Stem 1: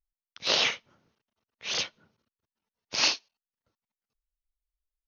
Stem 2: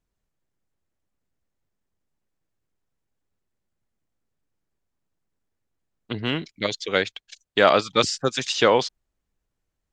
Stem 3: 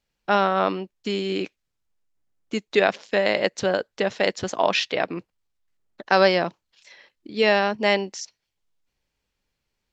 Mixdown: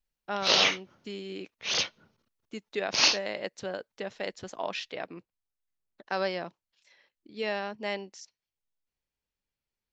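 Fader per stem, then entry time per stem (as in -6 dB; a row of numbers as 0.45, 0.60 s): +2.0 dB, off, -13.0 dB; 0.00 s, off, 0.00 s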